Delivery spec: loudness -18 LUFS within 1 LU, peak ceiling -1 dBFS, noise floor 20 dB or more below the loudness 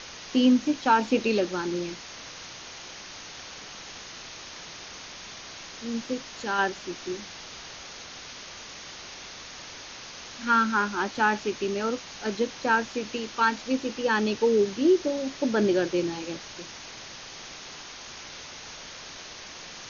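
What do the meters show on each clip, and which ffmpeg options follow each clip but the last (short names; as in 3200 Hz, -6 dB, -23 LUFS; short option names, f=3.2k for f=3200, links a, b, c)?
noise floor -43 dBFS; noise floor target -46 dBFS; loudness -26.0 LUFS; peak -9.5 dBFS; loudness target -18.0 LUFS
-> -af "afftdn=nr=6:nf=-43"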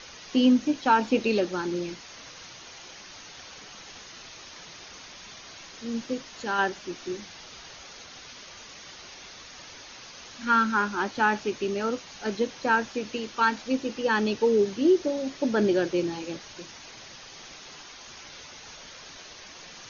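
noise floor -46 dBFS; loudness -26.0 LUFS; peak -9.5 dBFS; loudness target -18.0 LUFS
-> -af "volume=8dB"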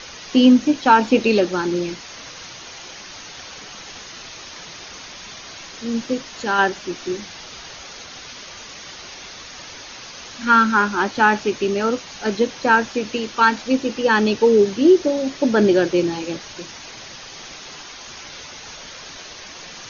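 loudness -18.0 LUFS; peak -1.5 dBFS; noise floor -38 dBFS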